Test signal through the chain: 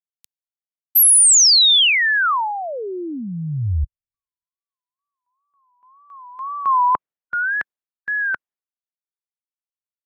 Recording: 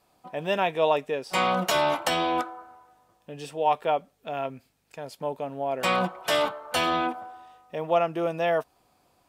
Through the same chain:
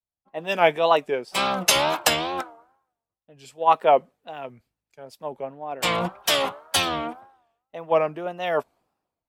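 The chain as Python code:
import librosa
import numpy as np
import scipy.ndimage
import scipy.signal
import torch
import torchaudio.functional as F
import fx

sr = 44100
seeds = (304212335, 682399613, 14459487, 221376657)

y = fx.hpss(x, sr, part='percussive', gain_db=6)
y = fx.wow_flutter(y, sr, seeds[0], rate_hz=2.1, depth_cents=140.0)
y = fx.band_widen(y, sr, depth_pct=100)
y = F.gain(torch.from_numpy(y), -1.5).numpy()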